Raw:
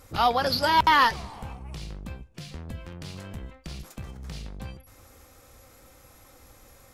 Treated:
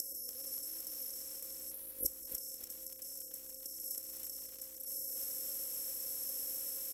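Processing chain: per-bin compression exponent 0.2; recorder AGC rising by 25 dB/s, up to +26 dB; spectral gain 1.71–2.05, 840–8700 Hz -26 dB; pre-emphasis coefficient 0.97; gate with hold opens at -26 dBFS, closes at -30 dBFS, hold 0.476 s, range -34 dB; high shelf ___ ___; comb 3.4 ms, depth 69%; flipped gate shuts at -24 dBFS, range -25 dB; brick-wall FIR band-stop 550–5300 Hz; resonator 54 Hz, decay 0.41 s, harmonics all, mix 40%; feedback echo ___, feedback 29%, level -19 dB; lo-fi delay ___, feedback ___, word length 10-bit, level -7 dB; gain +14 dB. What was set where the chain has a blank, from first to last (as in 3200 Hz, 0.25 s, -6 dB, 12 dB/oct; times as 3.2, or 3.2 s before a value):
7200 Hz, +7 dB, 0.195 s, 0.289 s, 55%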